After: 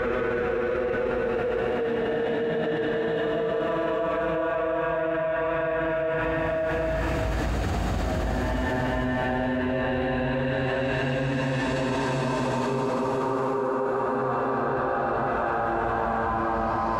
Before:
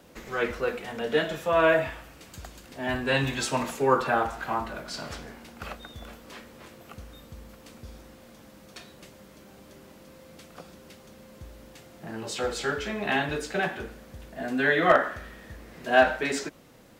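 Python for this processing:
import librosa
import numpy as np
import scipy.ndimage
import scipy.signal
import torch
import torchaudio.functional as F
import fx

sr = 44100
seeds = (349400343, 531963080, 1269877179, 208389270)

y = fx.paulstretch(x, sr, seeds[0], factor=4.0, window_s=1.0, from_s=0.41)
y = fx.lowpass(y, sr, hz=1100.0, slope=6)
y = fx.env_flatten(y, sr, amount_pct=100)
y = y * 10.0 ** (-6.0 / 20.0)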